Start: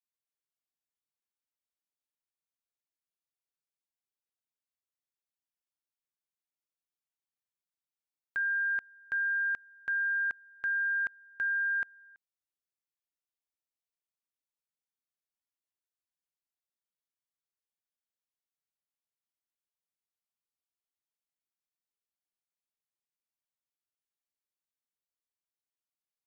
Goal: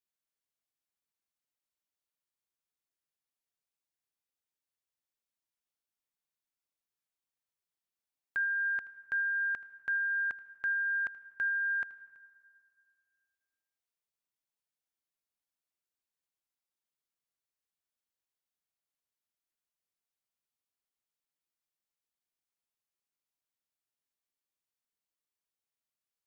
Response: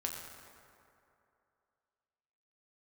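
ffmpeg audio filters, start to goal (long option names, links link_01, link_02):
-filter_complex "[0:a]asplit=2[link_01][link_02];[1:a]atrim=start_sample=2205,asetrate=52920,aresample=44100,adelay=79[link_03];[link_02][link_03]afir=irnorm=-1:irlink=0,volume=-16dB[link_04];[link_01][link_04]amix=inputs=2:normalize=0"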